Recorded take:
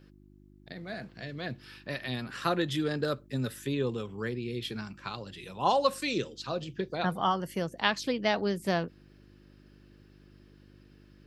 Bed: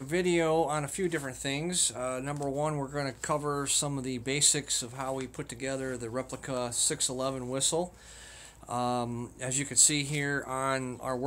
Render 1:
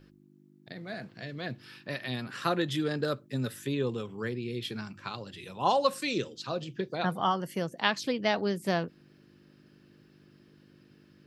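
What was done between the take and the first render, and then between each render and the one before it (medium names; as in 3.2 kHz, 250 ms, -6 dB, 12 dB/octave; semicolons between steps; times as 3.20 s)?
de-hum 50 Hz, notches 2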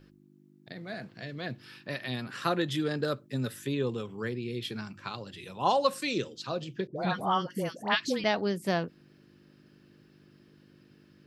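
6.87–8.24 s: phase dispersion highs, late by 90 ms, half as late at 930 Hz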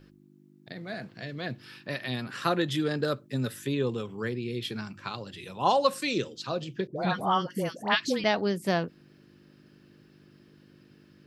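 trim +2 dB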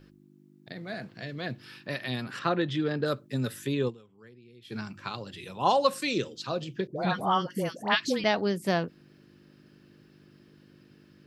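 2.39–3.06 s: distance through air 150 m; 3.88–4.73 s: dip -20.5 dB, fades 0.30 s exponential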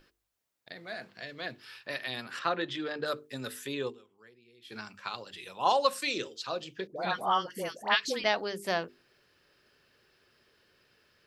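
peaking EQ 130 Hz -14 dB 2.5 oct; hum notches 50/100/150/200/250/300/350/400/450 Hz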